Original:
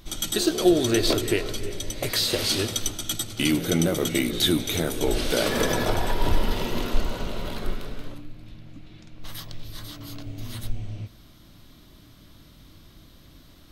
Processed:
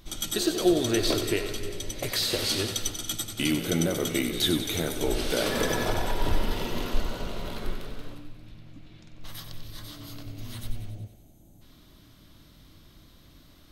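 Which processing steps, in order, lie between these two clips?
gain on a spectral selection 0:10.91–0:11.62, 910–6,000 Hz −17 dB
feedback echo with a high-pass in the loop 93 ms, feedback 62%, level −9.5 dB
level −3.5 dB

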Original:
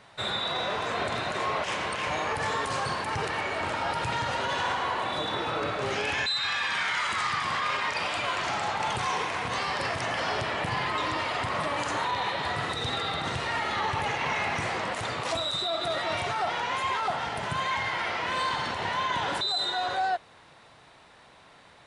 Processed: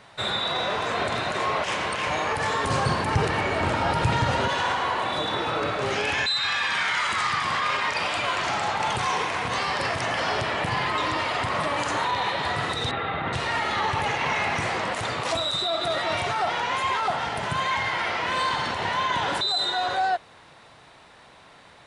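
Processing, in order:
0:02.64–0:04.48: low-shelf EQ 360 Hz +10 dB
0:12.91–0:13.33: low-pass filter 2,700 Hz 24 dB per octave
level +3.5 dB

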